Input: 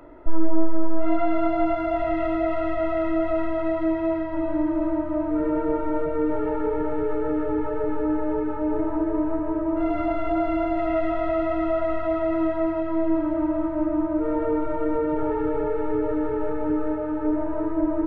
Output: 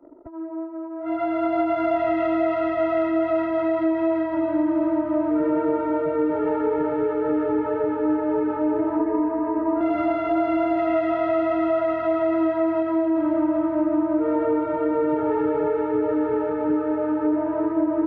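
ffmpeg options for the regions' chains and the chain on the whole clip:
ffmpeg -i in.wav -filter_complex "[0:a]asettb=1/sr,asplit=3[link_01][link_02][link_03];[link_01]atrim=end=8.994[link_04];[link_02]atrim=start=8.99:end=9.81,asetpts=PTS-STARTPTS,afade=type=in:duration=0.004:curve=qsin,afade=type=out:start_time=0.816:duration=0.004:curve=qsin,lowpass=2200,aecho=1:1:4.2:0.9,atrim=end_sample=36162[link_05];[link_03]atrim=start=9.806[link_06];[link_04][link_05]acrossfade=duration=0.004:curve1=hsin:curve2=qsin[link_07];[link_07][link_06]acrossfade=duration=0.004:curve1=qsin:curve2=hsin,acompressor=threshold=-21dB:ratio=10,highpass=140,anlmdn=0.251,volume=4.5dB" out.wav

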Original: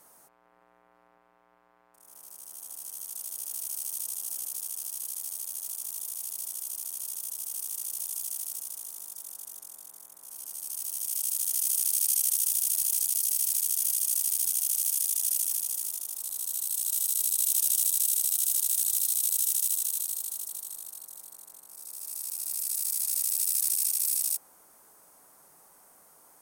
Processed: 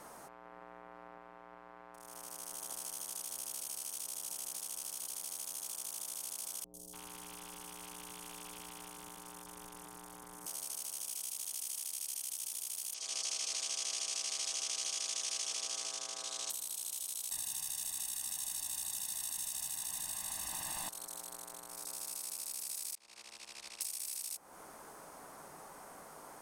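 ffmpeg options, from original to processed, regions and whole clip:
ffmpeg -i in.wav -filter_complex "[0:a]asettb=1/sr,asplit=3[link_01][link_02][link_03];[link_01]atrim=end=6.644[link_04];[link_02]atrim=start=6.64:end=10.46,asetpts=PTS-STARTPTS,afade=type=in:duration=0.004:curve=qsin,afade=type=out:start_time=3.816:duration=0.004:curve=qsin,acrossover=split=3200[link_05][link_06];[link_06]acompressor=threshold=-47dB:ratio=4:attack=1:release=60[link_07];[link_05][link_07]amix=inputs=2:normalize=0,lowshelf=frequency=440:gain=7.5,acrossover=split=570|5000[link_08][link_09][link_10];[link_10]adelay=100[link_11];[link_09]adelay=290[link_12];[link_08][link_12][link_11]amix=inputs=3:normalize=0,atrim=end_sample=168462[link_13];[link_03]atrim=start=10.456[link_14];[link_04][link_13]acrossfade=duration=0.004:curve1=hsin:curve2=qsin[link_15];[link_15][link_14]acrossfade=duration=0.004:curve1=qsin:curve2=hsin,asettb=1/sr,asplit=3[link_16][link_17][link_18];[link_16]atrim=end=12.944[link_19];[link_17]atrim=start=12.94:end=16.5,asetpts=PTS-STARTPTS,afade=type=in:duration=0.004:curve=qsin,afade=type=out:start_time=3.556:duration=0.004:curve=qsin,highpass=290,equalizer=frequency=310:width_type=q:width=4:gain=-3,equalizer=frequency=460:width_type=q:width=4:gain=9,equalizer=frequency=1300:width_type=q:width=4:gain=3,lowpass=frequency=6700:width=0.5412,lowpass=frequency=6700:width=1.3066,aecho=1:1:6.2:0.55,atrim=end_sample=156996[link_20];[link_18]atrim=start=16.496[link_21];[link_19][link_20]acrossfade=duration=0.004:curve1=hsin:curve2=qsin[link_22];[link_22][link_21]acrossfade=duration=0.004:curve1=qsin:curve2=hsin,asettb=1/sr,asplit=3[link_23][link_24][link_25];[link_23]atrim=end=17.314[link_26];[link_24]atrim=start=17.31:end=20.89,asetpts=PTS-STARTPTS,afade=type=in:duration=0.004:curve=qsin,afade=type=out:start_time=3.576:duration=0.004:curve=qsin,aeval=exprs='val(0)+0.5*0.015*sgn(val(0))':channel_layout=same,aecho=1:1:1.1:0.98,atrim=end_sample=157878[link_27];[link_25]atrim=start=20.886[link_28];[link_26][link_27]acrossfade=duration=0.004:curve1=hsin:curve2=qsin[link_29];[link_29][link_28]acrossfade=duration=0.004:curve1=qsin:curve2=hsin,asettb=1/sr,asplit=3[link_30][link_31][link_32];[link_30]atrim=end=22.954[link_33];[link_31]atrim=start=22.95:end=23.81,asetpts=PTS-STARTPTS,afade=type=in:duration=0.004:curve=qsin,afade=type=out:start_time=0.856:duration=0.004:curve=qsin,lowpass=2900,agate=range=-33dB:threshold=-44dB:ratio=3:release=100:detection=peak,afreqshift=36[link_34];[link_32]atrim=start=23.806[link_35];[link_33][link_34]acrossfade=duration=0.004:curve1=hsin:curve2=qsin[link_36];[link_36][link_35]acrossfade=duration=0.004:curve1=qsin:curve2=hsin,acompressor=threshold=-37dB:ratio=6,aemphasis=mode=reproduction:type=50fm,volume=10.5dB" out.wav

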